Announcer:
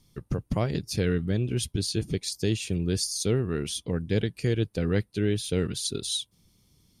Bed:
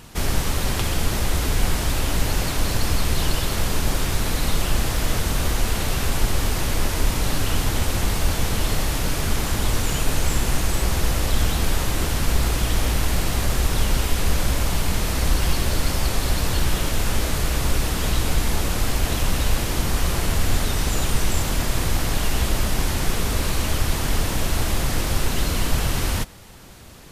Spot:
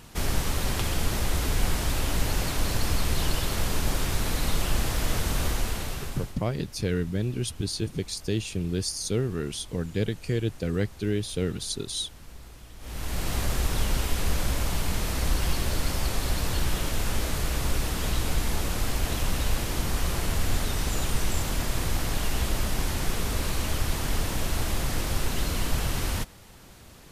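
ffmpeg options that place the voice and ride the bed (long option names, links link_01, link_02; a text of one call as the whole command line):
ffmpeg -i stem1.wav -i stem2.wav -filter_complex "[0:a]adelay=5850,volume=-1.5dB[link_01];[1:a]volume=15.5dB,afade=type=out:start_time=5.44:duration=0.94:silence=0.0891251,afade=type=in:start_time=12.79:duration=0.55:silence=0.1[link_02];[link_01][link_02]amix=inputs=2:normalize=0" out.wav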